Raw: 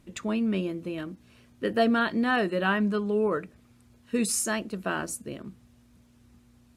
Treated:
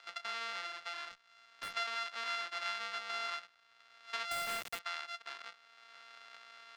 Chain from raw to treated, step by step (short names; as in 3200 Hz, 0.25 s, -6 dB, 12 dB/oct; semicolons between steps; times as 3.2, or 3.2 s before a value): sample sorter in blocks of 64 samples; Chebyshev band-pass 1300–4400 Hz, order 2; 1.11–1.75 tube stage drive 37 dB, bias 0.75; 4.31–4.79 companded quantiser 2-bit; three-band squash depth 70%; gain -7 dB